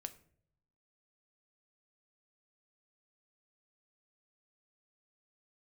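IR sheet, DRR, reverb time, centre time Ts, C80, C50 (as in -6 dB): 9.0 dB, no single decay rate, 5 ms, 20.0 dB, 16.0 dB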